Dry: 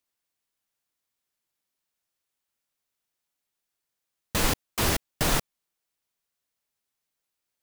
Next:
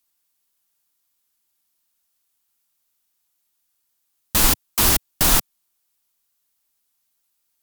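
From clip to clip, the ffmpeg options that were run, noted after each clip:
ffmpeg -i in.wav -af "equalizer=frequency=125:width_type=o:width=1:gain=-8,equalizer=frequency=500:width_type=o:width=1:gain=-8,equalizer=frequency=2000:width_type=o:width=1:gain=-4,equalizer=frequency=16000:width_type=o:width=1:gain=8,volume=7.5dB" out.wav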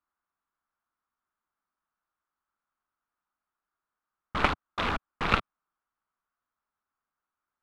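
ffmpeg -i in.wav -af "lowpass=frequency=1300:width_type=q:width=3.3,aeval=exprs='0.562*(cos(1*acos(clip(val(0)/0.562,-1,1)))-cos(1*PI/2))+0.282*(cos(3*acos(clip(val(0)/0.562,-1,1)))-cos(3*PI/2))':channel_layout=same" out.wav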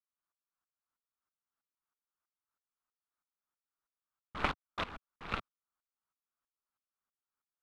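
ffmpeg -i in.wav -af "aeval=exprs='val(0)*pow(10,-19*if(lt(mod(-3.1*n/s,1),2*abs(-3.1)/1000),1-mod(-3.1*n/s,1)/(2*abs(-3.1)/1000),(mod(-3.1*n/s,1)-2*abs(-3.1)/1000)/(1-2*abs(-3.1)/1000))/20)':channel_layout=same,volume=-4dB" out.wav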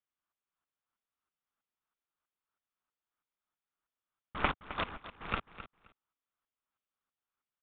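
ffmpeg -i in.wav -af "aecho=1:1:262|524:0.211|0.0359,aresample=8000,aresample=44100,volume=2dB" out.wav

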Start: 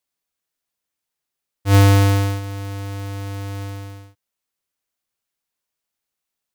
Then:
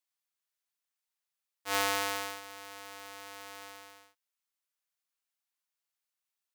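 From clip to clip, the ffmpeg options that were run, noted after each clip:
ffmpeg -i in.wav -af "highpass=810,volume=-6.5dB" out.wav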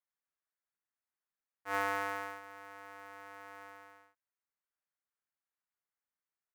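ffmpeg -i in.wav -af "highshelf=frequency=2500:width_type=q:width=1.5:gain=-12,volume=-3.5dB" out.wav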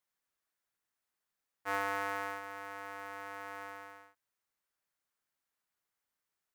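ffmpeg -i in.wav -af "acompressor=threshold=-38dB:ratio=2.5,volume=6dB" out.wav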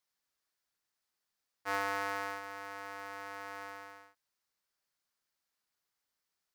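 ffmpeg -i in.wav -af "equalizer=frequency=4800:width=1.7:gain=6.5" out.wav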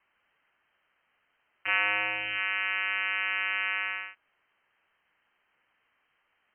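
ffmpeg -i in.wav -filter_complex "[0:a]asplit=2[link_01][link_02];[link_02]aeval=exprs='0.1*sin(PI/2*7.08*val(0)/0.1)':channel_layout=same,volume=-11dB[link_03];[link_01][link_03]amix=inputs=2:normalize=0,lowpass=frequency=2700:width_type=q:width=0.5098,lowpass=frequency=2700:width_type=q:width=0.6013,lowpass=frequency=2700:width_type=q:width=0.9,lowpass=frequency=2700:width_type=q:width=2.563,afreqshift=-3200,volume=7dB" out.wav

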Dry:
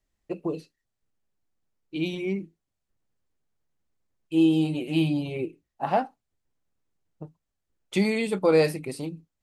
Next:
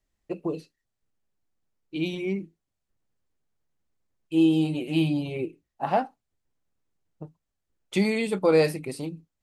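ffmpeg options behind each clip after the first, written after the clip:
ffmpeg -i in.wav -af anull out.wav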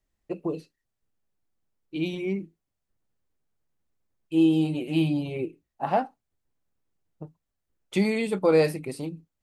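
ffmpeg -i in.wav -af "equalizer=frequency=5200:width_type=o:width=2.5:gain=-2.5" out.wav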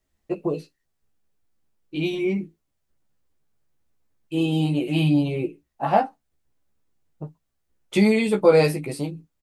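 ffmpeg -i in.wav -filter_complex "[0:a]asplit=2[link_01][link_02];[link_02]adelay=14,volume=-3dB[link_03];[link_01][link_03]amix=inputs=2:normalize=0,volume=3.5dB" out.wav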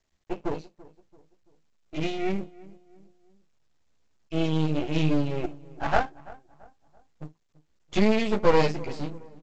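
ffmpeg -i in.wav -filter_complex "[0:a]aeval=exprs='max(val(0),0)':channel_layout=same,asplit=2[link_01][link_02];[link_02]adelay=336,lowpass=frequency=1400:poles=1,volume=-20dB,asplit=2[link_03][link_04];[link_04]adelay=336,lowpass=frequency=1400:poles=1,volume=0.44,asplit=2[link_05][link_06];[link_06]adelay=336,lowpass=frequency=1400:poles=1,volume=0.44[link_07];[link_01][link_03][link_05][link_07]amix=inputs=4:normalize=0" -ar 16000 -c:a pcm_mulaw out.wav

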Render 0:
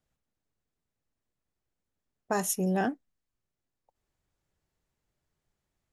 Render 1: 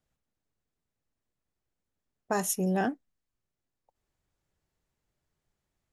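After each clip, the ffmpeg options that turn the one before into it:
ffmpeg -i in.wav -af anull out.wav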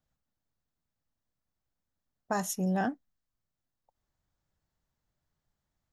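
ffmpeg -i in.wav -af "equalizer=frequency=400:width_type=o:width=0.67:gain=-7,equalizer=frequency=2500:width_type=o:width=0.67:gain=-6,equalizer=frequency=10000:width_type=o:width=0.67:gain=-9" out.wav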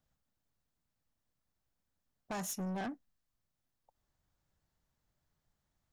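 ffmpeg -i in.wav -af "acompressor=threshold=-32dB:ratio=2,asoftclip=type=tanh:threshold=-36.5dB,volume=1dB" out.wav

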